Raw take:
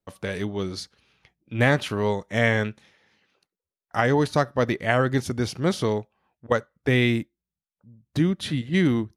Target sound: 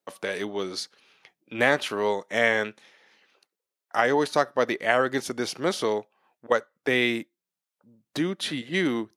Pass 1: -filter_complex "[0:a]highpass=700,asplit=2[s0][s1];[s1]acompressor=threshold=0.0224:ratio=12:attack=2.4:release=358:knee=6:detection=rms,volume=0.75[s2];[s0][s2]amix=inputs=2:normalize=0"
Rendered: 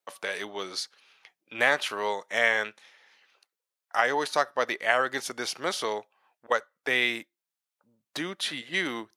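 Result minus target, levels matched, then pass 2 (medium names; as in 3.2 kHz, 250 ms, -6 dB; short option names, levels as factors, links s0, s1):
250 Hz band -7.5 dB
-filter_complex "[0:a]highpass=350,asplit=2[s0][s1];[s1]acompressor=threshold=0.0224:ratio=12:attack=2.4:release=358:knee=6:detection=rms,volume=0.75[s2];[s0][s2]amix=inputs=2:normalize=0"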